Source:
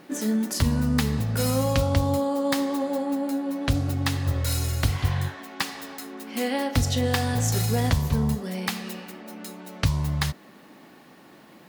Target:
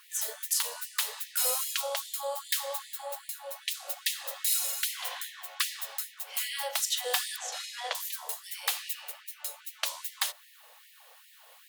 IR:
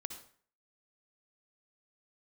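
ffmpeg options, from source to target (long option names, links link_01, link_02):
-filter_complex "[0:a]aexciter=amount=1.6:drive=7.2:freq=2800,asettb=1/sr,asplit=3[link_01][link_02][link_03];[link_01]atrim=end=7.364[link_04];[link_02]atrim=start=7.36:end=7.95,asetpts=PTS-STARTPTS,afade=type=in:duration=0.004:curve=qsin,afade=type=out:start_time=0.586:duration=0.004:curve=qsin,lowpass=4000[link_05];[link_03]atrim=start=7.946[link_06];[link_04][link_05]acrossfade=duration=0.004:curve1=hsin:curve2=qsin[link_07];[link_07][link_06]acrossfade=duration=0.004:curve1=qsin:curve2=hsin,afftfilt=real='re*gte(b*sr/1024,430*pow(1800/430,0.5+0.5*sin(2*PI*2.5*pts/sr)))':imag='im*gte(b*sr/1024,430*pow(1800/430,0.5+0.5*sin(2*PI*2.5*pts/sr)))':win_size=1024:overlap=0.75,volume=-4.5dB"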